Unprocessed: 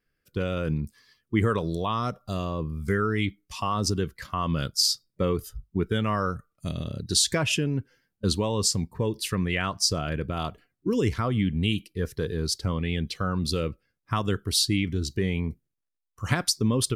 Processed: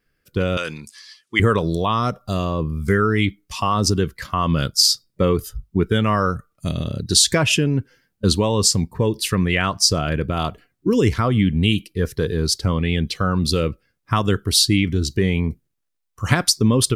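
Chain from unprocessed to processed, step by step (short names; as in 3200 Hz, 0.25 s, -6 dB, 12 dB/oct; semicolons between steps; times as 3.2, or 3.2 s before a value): 0.57–1.4 weighting filter ITU-R 468; gain +7.5 dB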